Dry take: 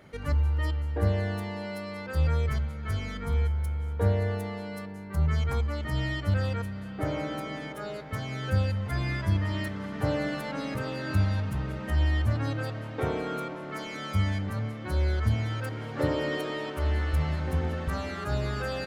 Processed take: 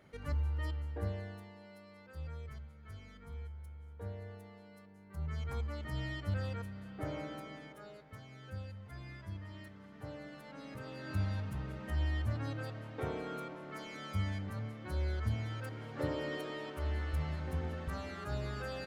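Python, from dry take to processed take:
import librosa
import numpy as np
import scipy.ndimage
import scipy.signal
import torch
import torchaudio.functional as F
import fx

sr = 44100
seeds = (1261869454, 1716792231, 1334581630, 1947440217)

y = fx.gain(x, sr, db=fx.line((0.85, -9.0), (1.55, -19.0), (4.84, -19.0), (5.63, -9.5), (7.18, -9.5), (8.3, -18.5), (10.3, -18.5), (11.27, -9.0)))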